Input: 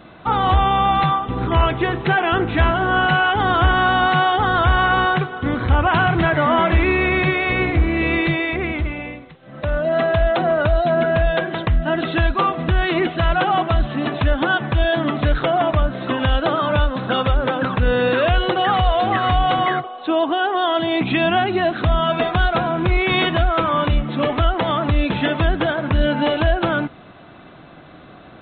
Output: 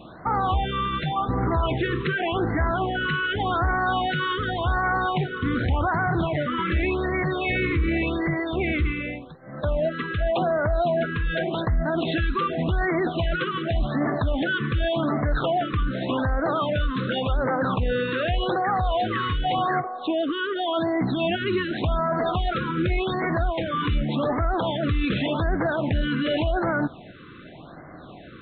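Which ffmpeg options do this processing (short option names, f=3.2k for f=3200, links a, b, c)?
-af "alimiter=limit=-16dB:level=0:latency=1:release=17,afftfilt=real='re*(1-between(b*sr/1024,700*pow(3200/700,0.5+0.5*sin(2*PI*0.87*pts/sr))/1.41,700*pow(3200/700,0.5+0.5*sin(2*PI*0.87*pts/sr))*1.41))':imag='im*(1-between(b*sr/1024,700*pow(3200/700,0.5+0.5*sin(2*PI*0.87*pts/sr))/1.41,700*pow(3200/700,0.5+0.5*sin(2*PI*0.87*pts/sr))*1.41))':win_size=1024:overlap=0.75"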